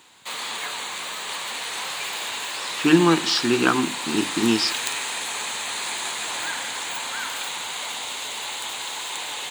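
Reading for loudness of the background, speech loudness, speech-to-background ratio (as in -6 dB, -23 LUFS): -27.5 LUFS, -21.0 LUFS, 6.5 dB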